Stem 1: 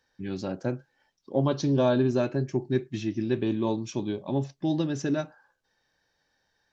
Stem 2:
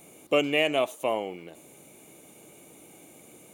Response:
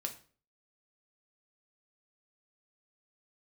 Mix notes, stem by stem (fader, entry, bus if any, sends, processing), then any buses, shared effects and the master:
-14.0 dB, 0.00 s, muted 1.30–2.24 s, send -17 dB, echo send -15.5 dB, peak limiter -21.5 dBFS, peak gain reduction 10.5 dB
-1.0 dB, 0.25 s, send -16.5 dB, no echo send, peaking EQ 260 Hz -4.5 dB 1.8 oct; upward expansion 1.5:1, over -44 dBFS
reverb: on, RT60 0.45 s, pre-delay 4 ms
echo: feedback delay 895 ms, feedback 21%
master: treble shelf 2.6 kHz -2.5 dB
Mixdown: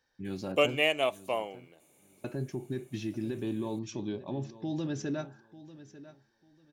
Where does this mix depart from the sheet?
stem 1 -14.0 dB -> -5.0 dB; master: missing treble shelf 2.6 kHz -2.5 dB

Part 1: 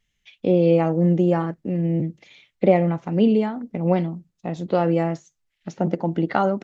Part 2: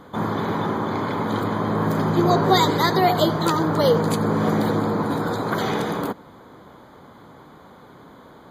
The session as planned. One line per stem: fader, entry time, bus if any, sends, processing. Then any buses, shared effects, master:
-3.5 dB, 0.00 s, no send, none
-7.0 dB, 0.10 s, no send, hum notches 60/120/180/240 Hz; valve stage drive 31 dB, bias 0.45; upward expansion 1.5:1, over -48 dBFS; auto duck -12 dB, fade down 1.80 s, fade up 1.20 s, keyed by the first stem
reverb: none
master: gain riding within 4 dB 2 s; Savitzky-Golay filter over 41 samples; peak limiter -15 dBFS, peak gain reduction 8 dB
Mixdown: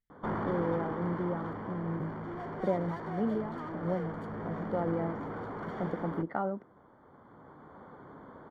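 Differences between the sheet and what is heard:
stem 1 -3.5 dB -> -14.5 dB; stem 2 -7.0 dB -> +4.5 dB

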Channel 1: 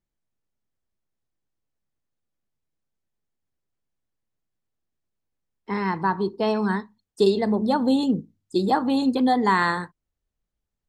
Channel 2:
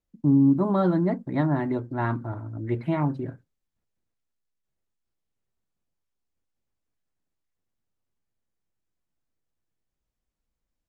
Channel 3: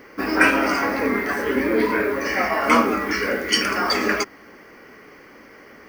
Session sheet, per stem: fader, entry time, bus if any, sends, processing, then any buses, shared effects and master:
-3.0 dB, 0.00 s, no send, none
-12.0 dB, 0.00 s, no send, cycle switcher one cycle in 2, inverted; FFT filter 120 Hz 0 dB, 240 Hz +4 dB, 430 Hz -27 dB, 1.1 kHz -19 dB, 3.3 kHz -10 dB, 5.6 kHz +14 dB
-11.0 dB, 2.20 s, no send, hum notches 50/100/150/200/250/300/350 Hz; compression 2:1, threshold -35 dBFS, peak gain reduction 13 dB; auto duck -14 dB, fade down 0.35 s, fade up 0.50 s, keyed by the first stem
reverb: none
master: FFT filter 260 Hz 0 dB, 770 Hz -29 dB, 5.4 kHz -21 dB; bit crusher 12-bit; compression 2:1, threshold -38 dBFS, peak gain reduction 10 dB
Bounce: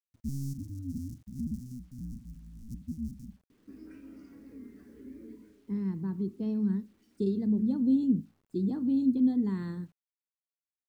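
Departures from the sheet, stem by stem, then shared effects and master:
stem 3: entry 2.20 s -> 3.50 s; master: missing compression 2:1, threshold -38 dBFS, peak gain reduction 10 dB

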